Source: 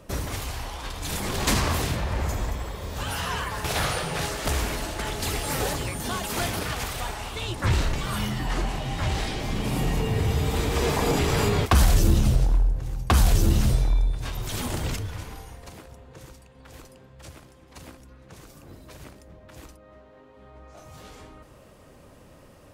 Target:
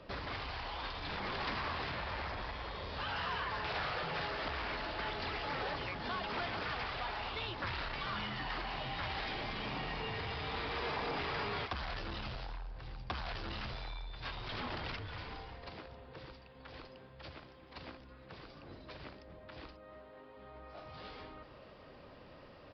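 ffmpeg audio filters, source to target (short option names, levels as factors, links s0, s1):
-filter_complex "[0:a]acrossover=split=750|2400[s0][s1][s2];[s0]acompressor=threshold=0.02:ratio=4[s3];[s1]acompressor=threshold=0.0224:ratio=4[s4];[s2]acompressor=threshold=0.00794:ratio=4[s5];[s3][s4][s5]amix=inputs=3:normalize=0,aresample=11025,asoftclip=type=tanh:threshold=0.0335,aresample=44100,lowshelf=f=300:g=-7.5,volume=0.891"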